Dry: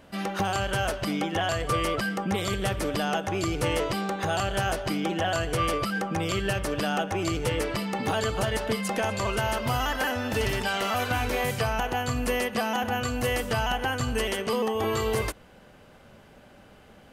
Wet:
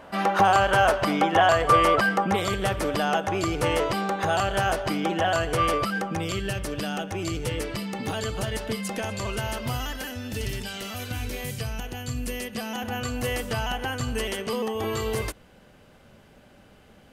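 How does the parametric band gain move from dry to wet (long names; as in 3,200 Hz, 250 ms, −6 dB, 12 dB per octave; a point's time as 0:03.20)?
parametric band 940 Hz 2.3 octaves
0:02.11 +11.5 dB
0:02.52 +4.5 dB
0:05.80 +4.5 dB
0:06.44 −5.5 dB
0:09.69 −5.5 dB
0:10.11 −14.5 dB
0:12.32 −14.5 dB
0:13.04 −3 dB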